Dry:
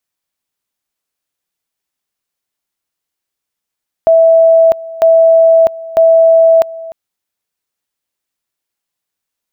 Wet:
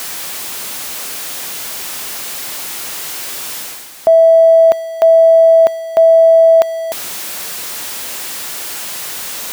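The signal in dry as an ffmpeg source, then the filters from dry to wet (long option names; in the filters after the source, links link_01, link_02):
-f lavfi -i "aevalsrc='pow(10,(-3.5-19.5*gte(mod(t,0.95),0.65))/20)*sin(2*PI*656*t)':duration=2.85:sample_rate=44100"
-af "aeval=exprs='val(0)+0.5*0.0355*sgn(val(0))':channel_layout=same,lowshelf=frequency=130:gain=-11.5,areverse,acompressor=mode=upward:threshold=-16dB:ratio=2.5,areverse"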